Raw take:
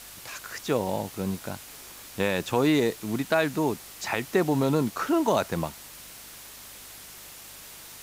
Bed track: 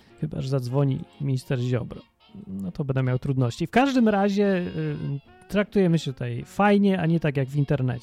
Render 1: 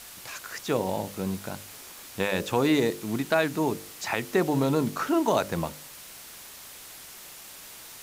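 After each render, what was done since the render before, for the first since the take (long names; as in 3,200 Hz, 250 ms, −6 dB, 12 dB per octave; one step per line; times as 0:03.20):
hum removal 50 Hz, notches 12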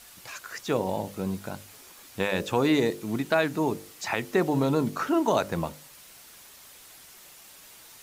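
broadband denoise 6 dB, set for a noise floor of −45 dBFS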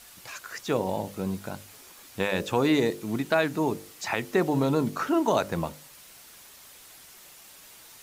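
no processing that can be heard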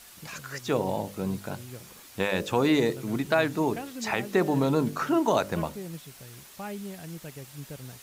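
mix in bed track −18.5 dB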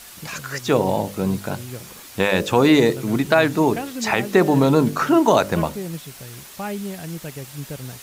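level +8.5 dB
brickwall limiter −3 dBFS, peak gain reduction 1.5 dB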